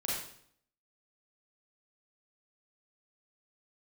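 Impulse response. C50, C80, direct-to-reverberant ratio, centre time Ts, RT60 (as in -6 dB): -0.5 dB, 4.0 dB, -6.0 dB, 62 ms, 0.65 s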